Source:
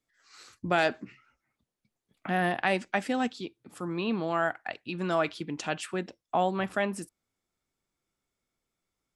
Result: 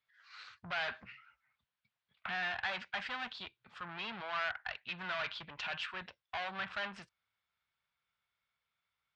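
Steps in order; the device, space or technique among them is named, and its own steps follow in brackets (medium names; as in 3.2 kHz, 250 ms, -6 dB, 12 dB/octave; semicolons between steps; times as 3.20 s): scooped metal amplifier (valve stage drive 35 dB, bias 0.55; cabinet simulation 92–3700 Hz, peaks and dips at 230 Hz +3 dB, 1 kHz +4 dB, 1.5 kHz +5 dB; amplifier tone stack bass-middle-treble 10-0-10); trim +8.5 dB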